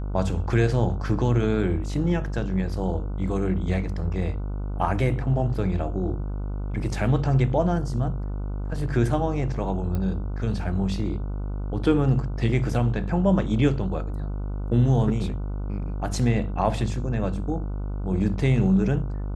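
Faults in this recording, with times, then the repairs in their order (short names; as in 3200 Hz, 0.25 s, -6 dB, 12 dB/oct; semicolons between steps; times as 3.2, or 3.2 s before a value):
buzz 50 Hz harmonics 30 -29 dBFS
9.95 pop -18 dBFS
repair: de-click; de-hum 50 Hz, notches 30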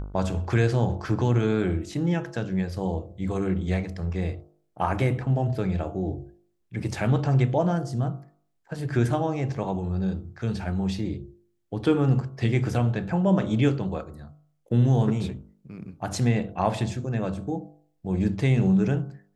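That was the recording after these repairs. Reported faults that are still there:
9.95 pop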